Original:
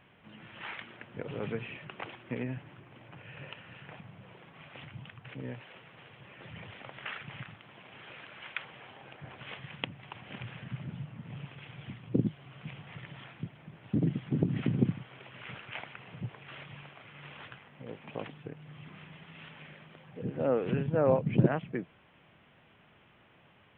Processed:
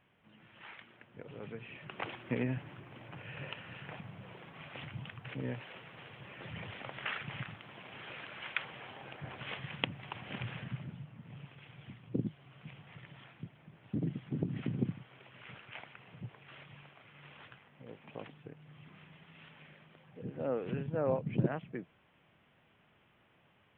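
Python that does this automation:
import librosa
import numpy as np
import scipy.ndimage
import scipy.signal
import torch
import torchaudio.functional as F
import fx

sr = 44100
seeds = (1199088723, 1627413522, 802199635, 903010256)

y = fx.gain(x, sr, db=fx.line((1.56, -9.5), (2.04, 2.0), (10.58, 2.0), (10.99, -6.5)))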